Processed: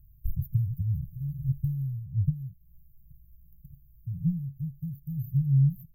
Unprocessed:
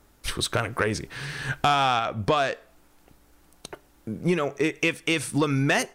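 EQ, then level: brick-wall FIR band-stop 170–13000 Hz; high shelf 12000 Hz -5.5 dB; +6.5 dB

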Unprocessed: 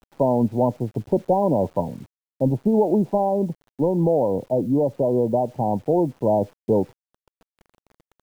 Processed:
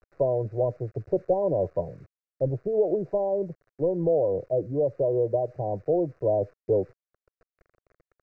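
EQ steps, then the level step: air absorption 190 m; fixed phaser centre 880 Hz, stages 6; -1.5 dB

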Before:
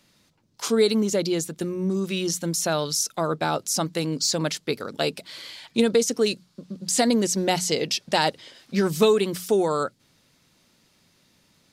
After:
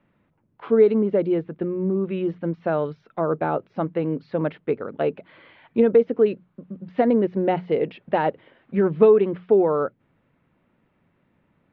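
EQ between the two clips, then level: Bessel low-pass 1500 Hz, order 8; dynamic EQ 450 Hz, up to +5 dB, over -34 dBFS, Q 1.3; 0.0 dB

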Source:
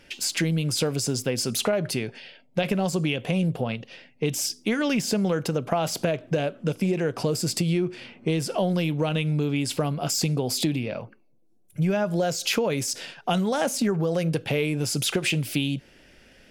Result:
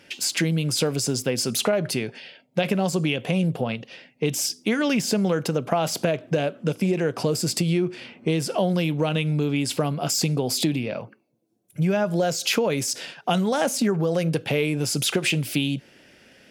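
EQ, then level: HPF 110 Hz; +2.0 dB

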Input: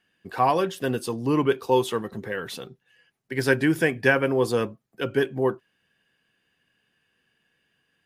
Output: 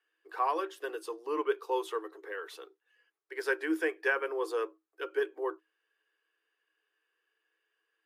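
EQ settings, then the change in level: rippled Chebyshev high-pass 310 Hz, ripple 9 dB; -4.5 dB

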